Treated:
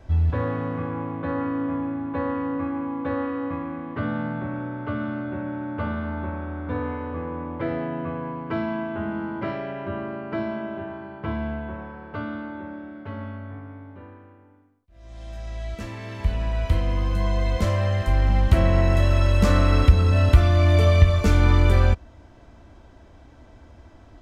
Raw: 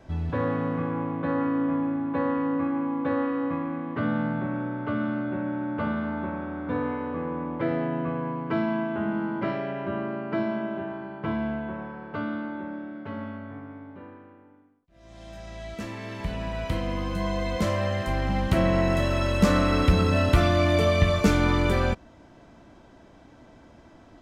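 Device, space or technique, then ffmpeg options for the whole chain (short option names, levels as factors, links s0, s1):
car stereo with a boomy subwoofer: -af "lowshelf=f=110:t=q:w=1.5:g=9,alimiter=limit=0.708:level=0:latency=1:release=478"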